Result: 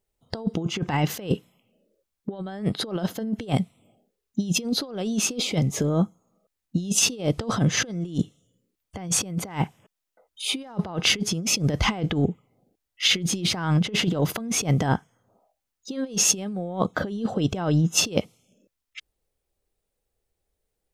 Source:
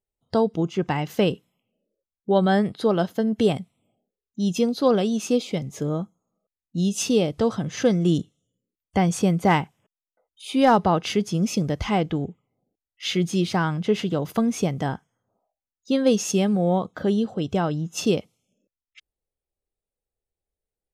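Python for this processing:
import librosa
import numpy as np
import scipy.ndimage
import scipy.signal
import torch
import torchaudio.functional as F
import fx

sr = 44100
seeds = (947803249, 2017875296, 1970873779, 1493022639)

y = fx.over_compress(x, sr, threshold_db=-27.0, ratio=-0.5)
y = y * librosa.db_to_amplitude(3.5)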